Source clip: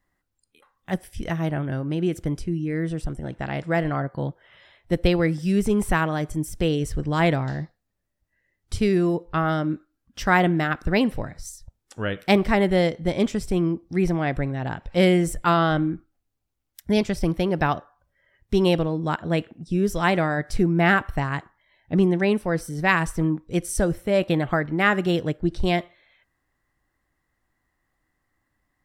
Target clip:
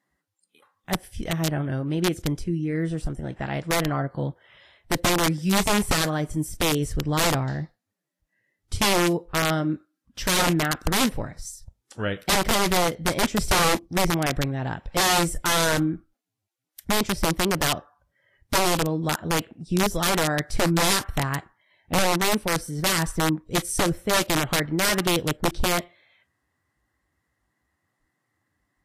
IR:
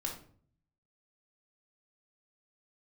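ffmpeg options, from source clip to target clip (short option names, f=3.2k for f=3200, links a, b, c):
-filter_complex "[0:a]asplit=3[a][b][c];[a]afade=t=out:st=13.37:d=0.02[d];[b]acontrast=56,afade=t=in:st=13.37:d=0.02,afade=t=out:st=13.85:d=0.02[e];[c]afade=t=in:st=13.85:d=0.02[f];[d][e][f]amix=inputs=3:normalize=0,aeval=exprs='(mod(5.31*val(0)+1,2)-1)/5.31':c=same" -ar 48000 -c:a libvorbis -b:a 32k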